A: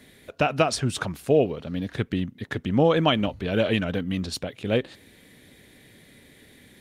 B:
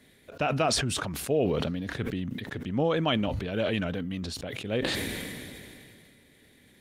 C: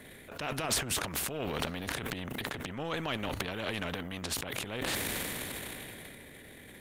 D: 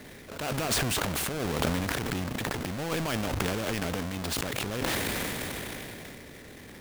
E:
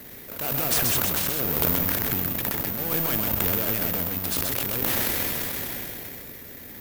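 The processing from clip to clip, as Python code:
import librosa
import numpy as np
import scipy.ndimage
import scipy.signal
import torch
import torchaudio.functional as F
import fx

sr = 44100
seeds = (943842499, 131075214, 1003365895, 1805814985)

y1 = fx.sustainer(x, sr, db_per_s=23.0)
y1 = y1 * 10.0 ** (-7.0 / 20.0)
y2 = fx.peak_eq(y1, sr, hz=5000.0, db=-9.5, octaves=1.2)
y2 = fx.transient(y2, sr, attack_db=-7, sustain_db=11)
y2 = fx.spectral_comp(y2, sr, ratio=2.0)
y3 = fx.halfwave_hold(y2, sr)
y3 = fx.sustainer(y3, sr, db_per_s=23.0)
y3 = y3 * 10.0 ** (-1.0 / 20.0)
y4 = y3 + 10.0 ** (-4.0 / 20.0) * np.pad(y3, (int(129 * sr / 1000.0), 0))[:len(y3)]
y4 = (np.kron(y4[::3], np.eye(3)[0]) * 3)[:len(y4)]
y4 = y4 * 10.0 ** (-1.0 / 20.0)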